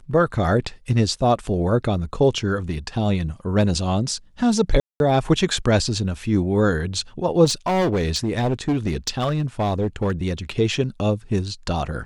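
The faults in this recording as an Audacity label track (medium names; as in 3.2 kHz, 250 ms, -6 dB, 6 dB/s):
4.800000	5.000000	dropout 201 ms
7.440000	10.500000	clipped -16.5 dBFS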